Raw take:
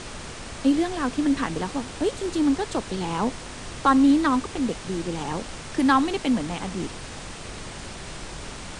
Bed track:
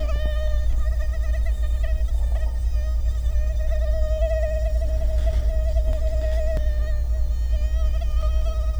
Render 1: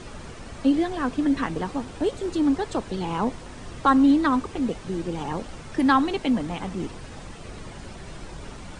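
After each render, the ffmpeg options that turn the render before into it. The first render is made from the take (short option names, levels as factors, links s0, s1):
-af "afftdn=nr=9:nf=-38"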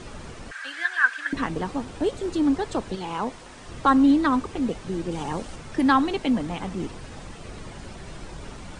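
-filter_complex "[0:a]asettb=1/sr,asplit=3[s0][s1][s2];[s0]atrim=end=0.514[s3];[s1]atrim=start=0.51:end=1.33,asetpts=PTS-STARTPTS,afade=t=in:d=0.004:c=qsin,afade=t=out:st=0.816:d=0.004:c=qsin,highpass=f=1600:t=q:w=11[s4];[s2]atrim=start=1.326[s5];[s3][s4]acrossfade=d=0.004:c1=hsin:c2=qsin[s6];[s6][s5]acrossfade=d=0.004:c1=qsin:c2=hsin,asettb=1/sr,asplit=3[s7][s8][s9];[s7]atrim=end=2.954[s10];[s8]atrim=start=2.95:end=3.69,asetpts=PTS-STARTPTS,afade=t=in:d=0.004:c=qsin,afade=t=out:st=0.736:d=0.004:c=qsin,lowshelf=f=340:g=-9[s11];[s9]atrim=start=3.686[s12];[s10][s11]acrossfade=d=0.004:c1=hsin:c2=qsin[s13];[s13][s12]acrossfade=d=0.004:c1=qsin:c2=hsin,asettb=1/sr,asplit=3[s14][s15][s16];[s14]atrim=end=5.114[s17];[s15]atrim=start=5.11:end=5.56,asetpts=PTS-STARTPTS,afade=t=in:d=0.004:c=qsin,afade=t=out:st=0.446:d=0.004:c=qsin,highshelf=f=6800:g=8[s18];[s16]atrim=start=5.556[s19];[s17][s18]acrossfade=d=0.004:c1=hsin:c2=qsin[s20];[s20][s19]acrossfade=d=0.004:c1=qsin:c2=hsin"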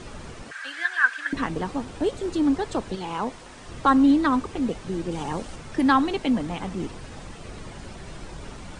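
-filter_complex "[0:a]asettb=1/sr,asplit=3[s0][s1][s2];[s0]atrim=end=0.434[s3];[s1]atrim=start=0.43:end=1.03,asetpts=PTS-STARTPTS,afade=t=in:d=0.004:c=qsin,afade=t=out:st=0.596:d=0.004:c=qsin,highpass=130[s4];[s2]atrim=start=1.026[s5];[s3][s4]acrossfade=d=0.004:c1=hsin:c2=qsin[s6];[s6][s5]acrossfade=d=0.004:c1=qsin:c2=hsin"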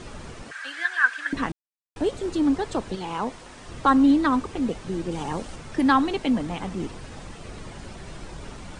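-filter_complex "[0:a]asplit=3[s0][s1][s2];[s0]atrim=end=1.52,asetpts=PTS-STARTPTS,afade=t=out:st=1.516:d=0.004:c=hsin[s3];[s1]atrim=start=1.52:end=1.96,asetpts=PTS-STARTPTS,volume=0[s4];[s2]atrim=start=1.96,asetpts=PTS-STARTPTS,afade=t=in:d=0.004:c=hsin[s5];[s3][s4][s5]concat=n=3:v=0:a=1"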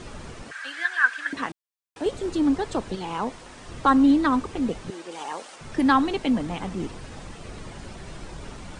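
-filter_complex "[0:a]asettb=1/sr,asplit=3[s0][s1][s2];[s0]atrim=end=1.304[s3];[s1]atrim=start=1.3:end=2.06,asetpts=PTS-STARTPTS,afade=t=in:d=0.004:c=qsin,afade=t=out:st=0.756:d=0.004:c=qsin,highpass=f=450:p=1[s4];[s2]atrim=start=2.056[s5];[s3][s4]acrossfade=d=0.004:c1=hsin:c2=qsin[s6];[s6][s5]acrossfade=d=0.004:c1=qsin:c2=hsin,asettb=1/sr,asplit=3[s7][s8][s9];[s7]atrim=end=4.904[s10];[s8]atrim=start=4.9:end=5.61,asetpts=PTS-STARTPTS,afade=t=in:d=0.004:c=qsin,afade=t=out:st=0.706:d=0.004:c=qsin,highpass=580[s11];[s9]atrim=start=5.606[s12];[s10][s11]acrossfade=d=0.004:c1=hsin:c2=qsin[s13];[s13][s12]acrossfade=d=0.004:c1=qsin:c2=hsin"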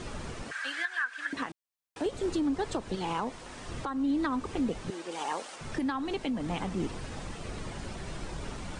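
-af "acompressor=threshold=0.0708:ratio=12,alimiter=limit=0.0841:level=0:latency=1:release=344"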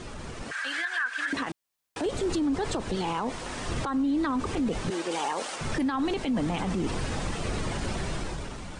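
-af "alimiter=level_in=2:limit=0.0631:level=0:latency=1:release=19,volume=0.501,dynaudnorm=f=110:g=11:m=2.82"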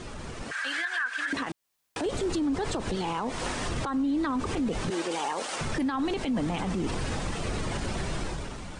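-af "dynaudnorm=f=240:g=11:m=2,alimiter=limit=0.0794:level=0:latency=1:release=171"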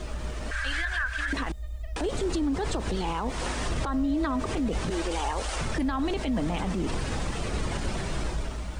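-filter_complex "[1:a]volume=0.211[s0];[0:a][s0]amix=inputs=2:normalize=0"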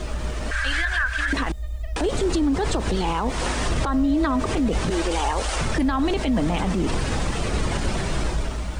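-af "volume=2"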